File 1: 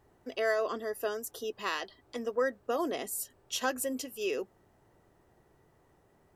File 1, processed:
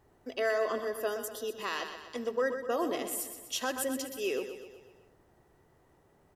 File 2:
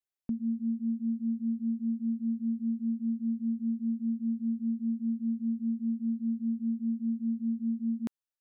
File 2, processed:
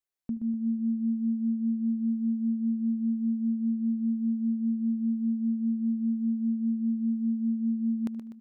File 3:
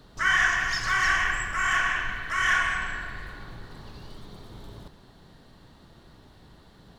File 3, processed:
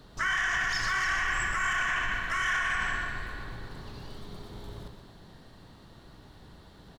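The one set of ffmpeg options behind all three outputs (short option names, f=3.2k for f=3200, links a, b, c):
-filter_complex "[0:a]asplit=2[a][b];[b]aecho=0:1:124|248|372|496|620|744:0.335|0.181|0.0977|0.0527|0.0285|0.0154[c];[a][c]amix=inputs=2:normalize=0,alimiter=limit=-20.5dB:level=0:latency=1:release=27,asplit=2[d][e];[e]adelay=75,lowpass=f=4.3k:p=1,volume=-18dB,asplit=2[f][g];[g]adelay=75,lowpass=f=4.3k:p=1,volume=0.3,asplit=2[h][i];[i]adelay=75,lowpass=f=4.3k:p=1,volume=0.3[j];[f][h][j]amix=inputs=3:normalize=0[k];[d][k]amix=inputs=2:normalize=0"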